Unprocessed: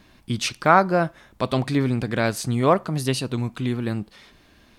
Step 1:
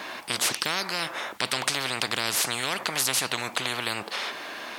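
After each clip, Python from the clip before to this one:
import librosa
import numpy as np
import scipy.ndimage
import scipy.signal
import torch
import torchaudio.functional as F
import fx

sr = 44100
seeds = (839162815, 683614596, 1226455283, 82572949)

y = scipy.signal.sosfilt(scipy.signal.butter(2, 680.0, 'highpass', fs=sr, output='sos'), x)
y = fx.high_shelf(y, sr, hz=2600.0, db=-9.5)
y = fx.spectral_comp(y, sr, ratio=10.0)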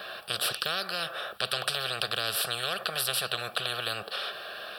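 y = fx.fixed_phaser(x, sr, hz=1400.0, stages=8)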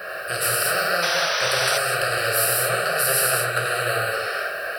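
y = fx.fixed_phaser(x, sr, hz=940.0, stages=6)
y = fx.rev_gated(y, sr, seeds[0], gate_ms=270, shape='flat', drr_db=-5.0)
y = fx.spec_paint(y, sr, seeds[1], shape='noise', start_s=1.02, length_s=0.76, low_hz=700.0, high_hz=6100.0, level_db=-33.0)
y = y * librosa.db_to_amplitude(7.5)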